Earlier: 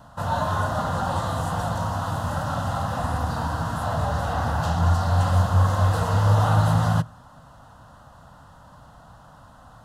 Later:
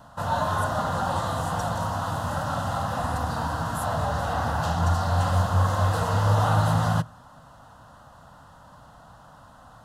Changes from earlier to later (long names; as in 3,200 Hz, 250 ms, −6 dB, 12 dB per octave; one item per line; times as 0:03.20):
speech: add spectral tilt +3 dB per octave
master: add low-shelf EQ 170 Hz −4.5 dB